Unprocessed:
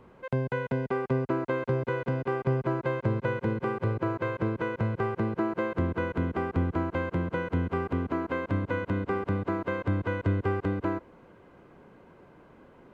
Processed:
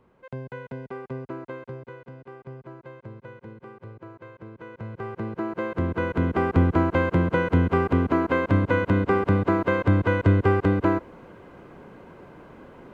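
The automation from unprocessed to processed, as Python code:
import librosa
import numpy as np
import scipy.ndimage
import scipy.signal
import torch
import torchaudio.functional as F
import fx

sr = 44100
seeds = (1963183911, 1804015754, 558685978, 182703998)

y = fx.gain(x, sr, db=fx.line((1.46, -7.0), (2.09, -14.0), (4.45, -14.0), (5.13, -3.5), (6.54, 8.0)))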